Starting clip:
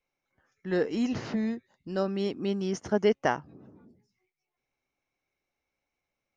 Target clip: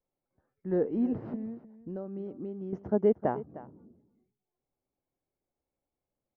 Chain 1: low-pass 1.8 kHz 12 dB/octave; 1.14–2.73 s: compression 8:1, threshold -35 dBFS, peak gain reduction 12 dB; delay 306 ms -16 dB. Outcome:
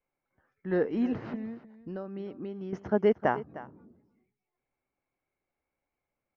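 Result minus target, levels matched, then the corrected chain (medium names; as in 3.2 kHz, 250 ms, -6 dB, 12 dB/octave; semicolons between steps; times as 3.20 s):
2 kHz band +12.0 dB
low-pass 700 Hz 12 dB/octave; 1.14–2.73 s: compression 8:1, threshold -35 dBFS, peak gain reduction 11 dB; delay 306 ms -16 dB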